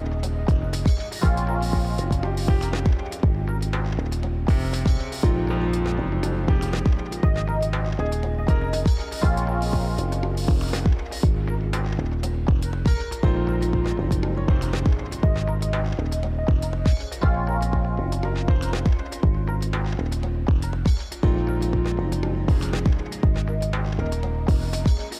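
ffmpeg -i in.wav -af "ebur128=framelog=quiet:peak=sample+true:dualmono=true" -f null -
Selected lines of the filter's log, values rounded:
Integrated loudness:
  I:         -20.4 LUFS
  Threshold: -30.4 LUFS
Loudness range:
  LRA:         0.8 LU
  Threshold: -40.4 LUFS
  LRA low:   -20.8 LUFS
  LRA high:  -19.9 LUFS
Sample peak:
  Peak:      -10.0 dBFS
True peak:
  Peak:      -10.0 dBFS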